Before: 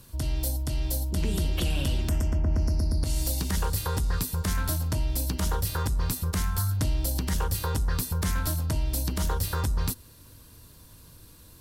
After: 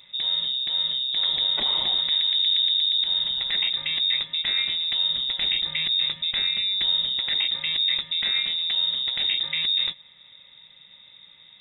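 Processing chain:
parametric band 1,700 Hz +11 dB 0.34 octaves
voice inversion scrambler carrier 3,700 Hz
0:05.10–0:07.29: low-shelf EQ 180 Hz +7 dB

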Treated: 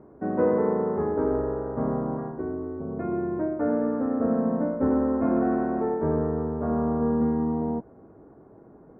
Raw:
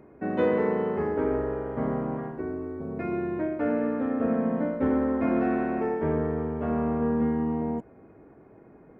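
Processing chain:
low-pass filter 1,400 Hz 24 dB per octave
level +1.5 dB

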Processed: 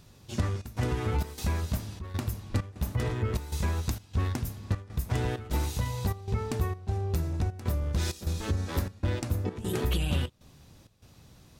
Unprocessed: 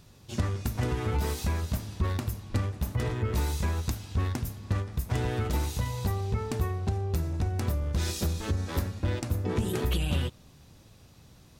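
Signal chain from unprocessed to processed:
gate pattern "xxxx.xxx." 98 BPM −12 dB

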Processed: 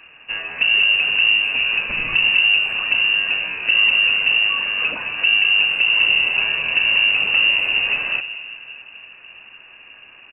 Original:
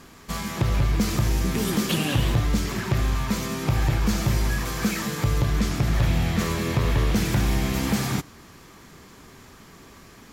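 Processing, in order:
low-shelf EQ 90 Hz +8 dB
on a send at −12 dB: convolution reverb RT60 2.7 s, pre-delay 8 ms
on the sum: voice inversion scrambler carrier 2,800 Hz
far-end echo of a speakerphone 160 ms, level −30 dB

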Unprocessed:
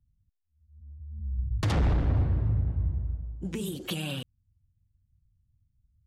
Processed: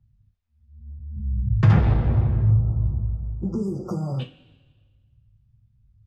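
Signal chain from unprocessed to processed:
high-frequency loss of the air 180 metres
coupled-rooms reverb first 0.21 s, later 1.5 s, from −27 dB, DRR 0.5 dB
in parallel at +1.5 dB: downward compressor, threshold −33 dBFS, peak gain reduction 16 dB
0:01.16–0:01.79: on the sum: graphic EQ with 15 bands 160 Hz +11 dB, 1,600 Hz +6 dB, 4,000 Hz −7 dB
0:02.51–0:04.20: time-frequency box erased 1,400–4,700 Hz

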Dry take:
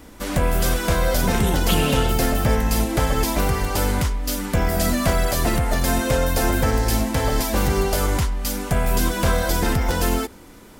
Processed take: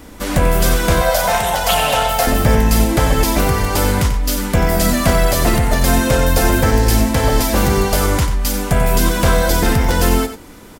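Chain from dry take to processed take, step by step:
0:01.01–0:02.27: low shelf with overshoot 470 Hz −11.5 dB, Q 3
single-tap delay 91 ms −10 dB
level +5.5 dB

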